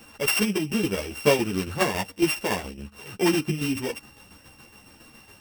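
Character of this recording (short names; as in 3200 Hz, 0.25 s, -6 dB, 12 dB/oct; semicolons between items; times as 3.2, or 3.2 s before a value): a buzz of ramps at a fixed pitch in blocks of 16 samples; tremolo saw down 7.2 Hz, depth 60%; a shimmering, thickened sound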